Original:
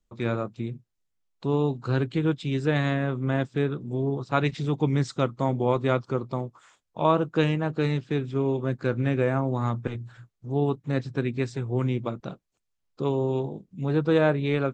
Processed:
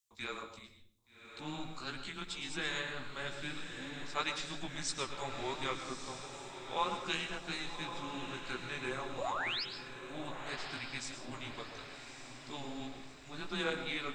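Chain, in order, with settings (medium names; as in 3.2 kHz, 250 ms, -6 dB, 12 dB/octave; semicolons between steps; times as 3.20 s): differentiator; frequency shift -140 Hz; painted sound rise, 9.56–10.04 s, 440–5300 Hz -43 dBFS; chorus 2.9 Hz, delay 16 ms, depth 3.9 ms; echo that smears into a reverb 1235 ms, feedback 49%, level -8 dB; reverberation RT60 0.60 s, pre-delay 109 ms, DRR 8 dB; speed mistake 24 fps film run at 25 fps; trim +8.5 dB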